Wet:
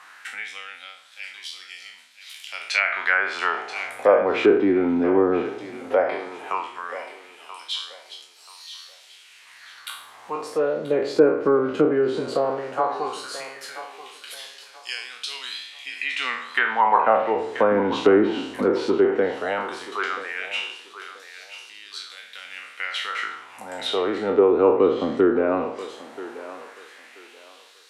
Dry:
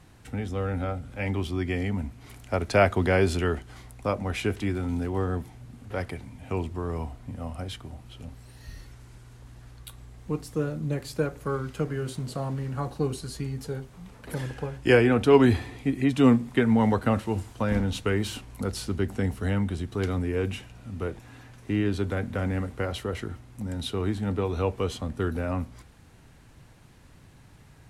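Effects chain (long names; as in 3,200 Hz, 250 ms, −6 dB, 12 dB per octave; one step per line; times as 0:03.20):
peak hold with a decay on every bin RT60 0.59 s
high-shelf EQ 4,300 Hz −8.5 dB
in parallel at +2.5 dB: downward compressor, threshold −38 dBFS, peak gain reduction 24 dB
on the sum: auto-filter high-pass sine 0.15 Hz 320–4,500 Hz
feedback echo with a high-pass in the loop 982 ms, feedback 33%, high-pass 570 Hz, level −12.5 dB
treble cut that deepens with the level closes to 1,800 Hz, closed at −18.5 dBFS
level +4 dB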